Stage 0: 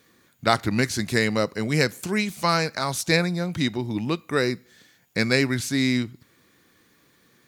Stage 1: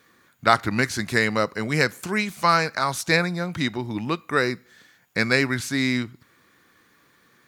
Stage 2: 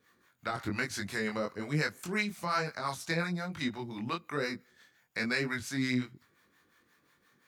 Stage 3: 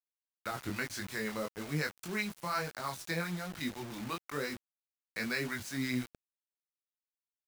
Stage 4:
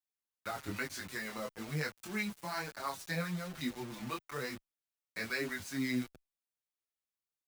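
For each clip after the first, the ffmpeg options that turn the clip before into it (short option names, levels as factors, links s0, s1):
-af "equalizer=f=1300:t=o:w=1.6:g=7.5,volume=0.794"
-filter_complex "[0:a]alimiter=limit=0.299:level=0:latency=1:release=13,acrossover=split=590[s0][s1];[s0]aeval=exprs='val(0)*(1-0.7/2+0.7/2*cos(2*PI*5.7*n/s))':c=same[s2];[s1]aeval=exprs='val(0)*(1-0.7/2-0.7/2*cos(2*PI*5.7*n/s))':c=same[s3];[s2][s3]amix=inputs=2:normalize=0,flanger=delay=20:depth=3.9:speed=1.1,volume=0.708"
-af "acrusher=bits=6:mix=0:aa=0.000001,volume=0.668"
-filter_complex "[0:a]asplit=2[s0][s1];[s1]adelay=6.6,afreqshift=-0.42[s2];[s0][s2]amix=inputs=2:normalize=1,volume=1.12"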